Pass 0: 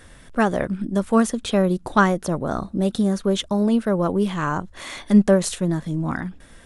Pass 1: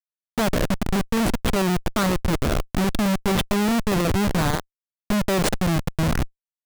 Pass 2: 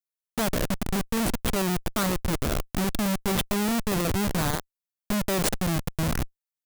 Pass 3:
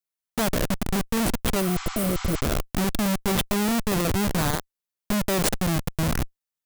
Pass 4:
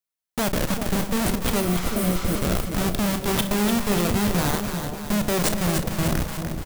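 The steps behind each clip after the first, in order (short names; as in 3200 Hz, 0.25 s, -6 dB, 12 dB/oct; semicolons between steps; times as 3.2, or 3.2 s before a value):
Schmitt trigger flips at -22.5 dBFS; gain +1.5 dB
high shelf 6900 Hz +9 dB; gain -5 dB
spectral repair 1.63–2.37, 740–8000 Hz after; gain +2 dB
reverse delay 0.127 s, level -13 dB; doubler 34 ms -12 dB; split-band echo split 810 Hz, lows 0.388 s, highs 0.295 s, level -6.5 dB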